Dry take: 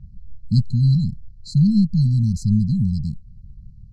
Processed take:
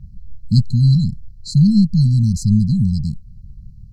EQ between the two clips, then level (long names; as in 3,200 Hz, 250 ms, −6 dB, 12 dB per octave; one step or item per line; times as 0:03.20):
high-shelf EQ 4,900 Hz +7 dB
+3.5 dB